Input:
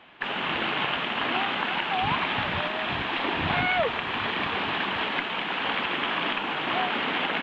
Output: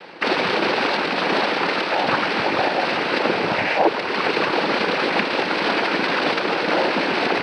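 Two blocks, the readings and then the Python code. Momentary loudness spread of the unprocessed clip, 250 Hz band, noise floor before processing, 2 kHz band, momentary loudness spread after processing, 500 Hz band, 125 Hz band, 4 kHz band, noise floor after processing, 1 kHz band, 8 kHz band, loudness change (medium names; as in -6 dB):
3 LU, +9.0 dB, -31 dBFS, +5.5 dB, 1 LU, +11.5 dB, +2.0 dB, +4.0 dB, -25 dBFS, +6.0 dB, no reading, +6.5 dB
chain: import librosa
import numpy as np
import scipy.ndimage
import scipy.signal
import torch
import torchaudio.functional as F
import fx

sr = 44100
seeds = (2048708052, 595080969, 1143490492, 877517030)

y = fx.cabinet(x, sr, low_hz=240.0, low_slope=12, high_hz=2900.0, hz=(340.0, 540.0, 790.0, 1500.0), db=(4, 10, -4, -4))
y = fx.noise_vocoder(y, sr, seeds[0], bands=8)
y = fx.rider(y, sr, range_db=10, speed_s=0.5)
y = fx.peak_eq(y, sr, hz=310.0, db=2.5, octaves=1.7)
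y = y * 10.0 ** (7.5 / 20.0)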